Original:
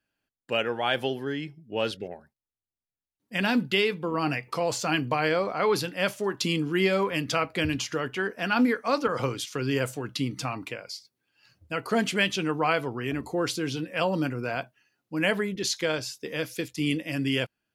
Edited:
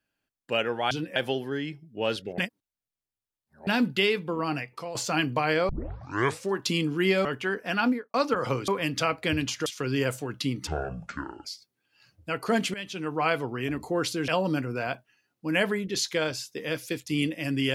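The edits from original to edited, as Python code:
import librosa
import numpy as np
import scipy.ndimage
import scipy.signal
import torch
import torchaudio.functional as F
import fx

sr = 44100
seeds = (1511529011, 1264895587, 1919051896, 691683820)

y = fx.studio_fade_out(x, sr, start_s=8.5, length_s=0.37)
y = fx.edit(y, sr, fx.reverse_span(start_s=2.13, length_s=1.29),
    fx.fade_out_to(start_s=4.03, length_s=0.67, floor_db=-11.5),
    fx.tape_start(start_s=5.44, length_s=0.83),
    fx.move(start_s=7.0, length_s=0.98, to_s=9.41),
    fx.speed_span(start_s=10.42, length_s=0.46, speed=0.59),
    fx.fade_in_from(start_s=12.17, length_s=0.59, floor_db=-17.0),
    fx.move(start_s=13.71, length_s=0.25, to_s=0.91), tone=tone)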